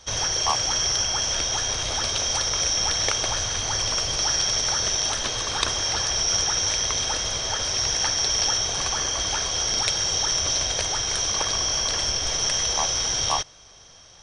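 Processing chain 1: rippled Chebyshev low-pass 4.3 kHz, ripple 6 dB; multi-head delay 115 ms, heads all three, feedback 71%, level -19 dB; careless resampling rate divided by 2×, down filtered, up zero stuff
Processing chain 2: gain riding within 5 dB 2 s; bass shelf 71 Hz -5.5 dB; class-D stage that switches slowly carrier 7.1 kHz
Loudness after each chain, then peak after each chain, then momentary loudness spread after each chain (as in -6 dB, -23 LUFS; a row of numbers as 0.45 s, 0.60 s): -26.0 LUFS, -25.5 LUFS; -3.5 dBFS, -7.5 dBFS; 2 LU, 1 LU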